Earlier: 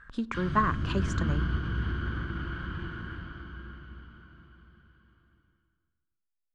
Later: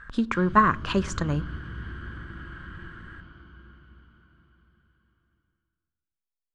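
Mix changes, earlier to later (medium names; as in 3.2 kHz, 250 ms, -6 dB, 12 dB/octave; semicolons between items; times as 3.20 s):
speech +7.0 dB; background -6.5 dB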